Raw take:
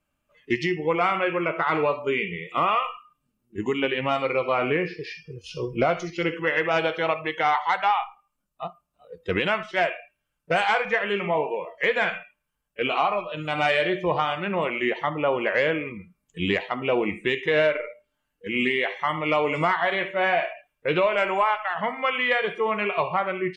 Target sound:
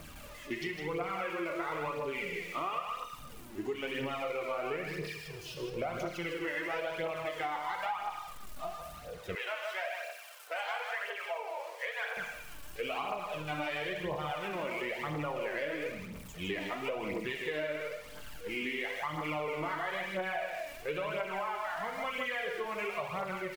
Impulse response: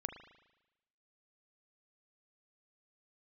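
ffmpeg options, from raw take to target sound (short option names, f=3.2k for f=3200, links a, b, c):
-filter_complex "[0:a]aeval=exprs='val(0)+0.5*0.0211*sgn(val(0))':c=same,aecho=1:1:157:0.473[a];[1:a]atrim=start_sample=2205,asetrate=61740,aresample=44100[b];[a][b]afir=irnorm=-1:irlink=0,aphaser=in_gain=1:out_gain=1:delay=3.6:decay=0.49:speed=0.99:type=triangular,acompressor=threshold=-25dB:ratio=6,asettb=1/sr,asplit=3[c][d][e];[c]atrim=end=9.354[f];[d]atrim=start=9.35:end=12.17,asetpts=PTS-STARTPTS,afade=t=in:d=0.004:c=qsin,afade=t=out:st=2.816:d=0.004:c=qsin,highpass=f=570:w=0.5412,highpass=f=570:w=1.3066[g];[e]atrim=start=12.166[h];[f][g]acrossfade=d=0.004:c1=hsin:c2=qsin[i];[i][h]acrossfade=d=0.004:c1=qsin:c2=hsin,volume=-7dB"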